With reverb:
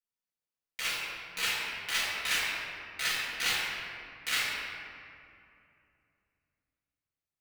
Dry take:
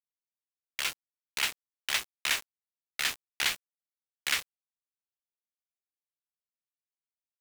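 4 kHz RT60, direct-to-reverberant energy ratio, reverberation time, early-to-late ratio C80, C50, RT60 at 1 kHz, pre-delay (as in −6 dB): 1.4 s, −10.5 dB, 2.6 s, −0.5 dB, −2.5 dB, 2.5 s, 4 ms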